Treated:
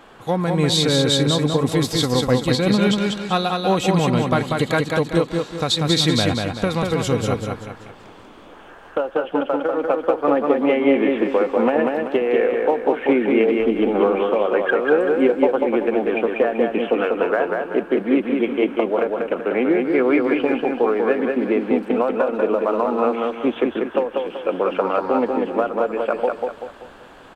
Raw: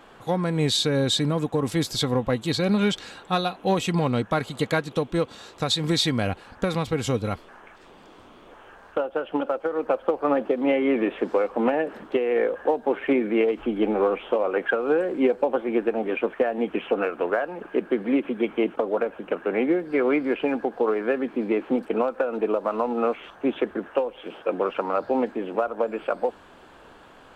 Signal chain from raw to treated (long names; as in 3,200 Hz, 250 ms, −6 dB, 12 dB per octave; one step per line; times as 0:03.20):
repeating echo 192 ms, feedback 40%, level −3.5 dB
level +3.5 dB